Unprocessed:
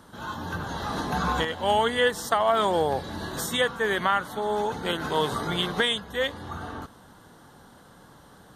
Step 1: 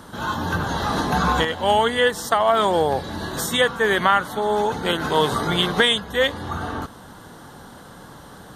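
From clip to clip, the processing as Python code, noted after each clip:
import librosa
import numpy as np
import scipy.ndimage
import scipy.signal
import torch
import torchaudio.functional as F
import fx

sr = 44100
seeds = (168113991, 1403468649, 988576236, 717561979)

y = fx.rider(x, sr, range_db=4, speed_s=2.0)
y = y * 10.0 ** (5.5 / 20.0)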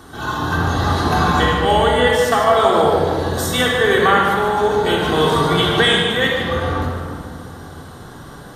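y = x + 10.0 ** (-8.5 / 20.0) * np.pad(x, (int(149 * sr / 1000.0), 0))[:len(x)]
y = fx.room_shoebox(y, sr, seeds[0], volume_m3=3600.0, walls='mixed', distance_m=3.5)
y = y * 10.0 ** (-1.0 / 20.0)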